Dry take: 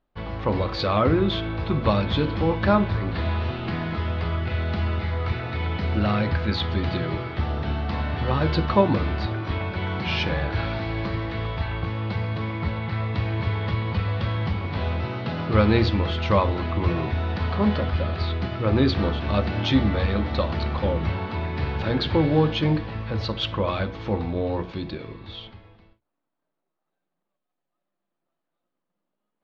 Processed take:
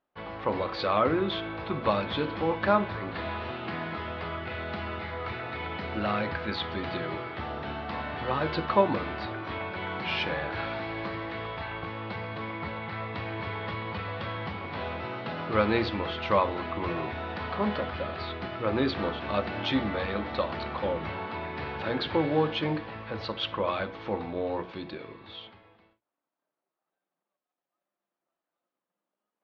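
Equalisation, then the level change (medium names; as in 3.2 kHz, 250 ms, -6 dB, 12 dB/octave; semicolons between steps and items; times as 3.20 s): high-pass 530 Hz 6 dB/octave; low-pass 3.4 kHz 6 dB/octave; distance through air 68 m; 0.0 dB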